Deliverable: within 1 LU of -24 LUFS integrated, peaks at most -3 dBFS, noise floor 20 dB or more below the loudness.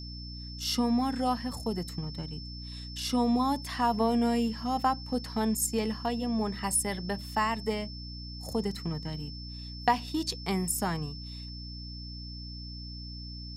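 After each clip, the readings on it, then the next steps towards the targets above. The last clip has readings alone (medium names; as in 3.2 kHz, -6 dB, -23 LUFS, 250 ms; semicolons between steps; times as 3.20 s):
hum 60 Hz; highest harmonic 300 Hz; hum level -40 dBFS; steady tone 5.3 kHz; tone level -44 dBFS; loudness -31.5 LUFS; peak level -11.5 dBFS; loudness target -24.0 LUFS
-> hum notches 60/120/180/240/300 Hz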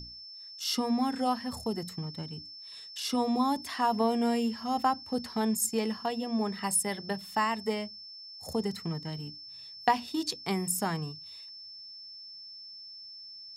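hum not found; steady tone 5.3 kHz; tone level -44 dBFS
-> band-stop 5.3 kHz, Q 30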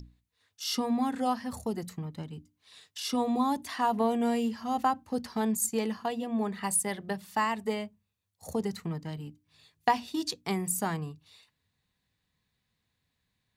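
steady tone not found; loudness -31.0 LUFS; peak level -11.0 dBFS; loudness target -24.0 LUFS
-> trim +7 dB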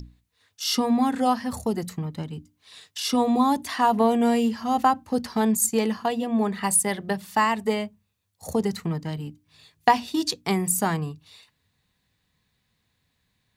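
loudness -24.0 LUFS; peak level -4.0 dBFS; noise floor -73 dBFS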